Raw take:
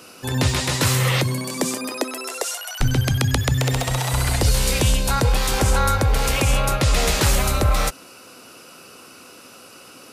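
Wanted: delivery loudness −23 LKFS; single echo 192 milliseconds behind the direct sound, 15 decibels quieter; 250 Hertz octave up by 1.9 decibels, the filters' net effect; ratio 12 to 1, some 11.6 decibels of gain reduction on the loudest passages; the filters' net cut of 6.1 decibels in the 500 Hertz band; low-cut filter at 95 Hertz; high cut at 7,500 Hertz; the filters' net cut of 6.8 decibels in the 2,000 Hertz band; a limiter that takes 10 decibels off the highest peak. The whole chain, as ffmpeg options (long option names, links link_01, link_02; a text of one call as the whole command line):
ffmpeg -i in.wav -af "highpass=95,lowpass=7500,equalizer=frequency=250:width_type=o:gain=5,equalizer=frequency=500:width_type=o:gain=-8.5,equalizer=frequency=2000:width_type=o:gain=-8.5,acompressor=threshold=-28dB:ratio=12,alimiter=limit=-23.5dB:level=0:latency=1,aecho=1:1:192:0.178,volume=10dB" out.wav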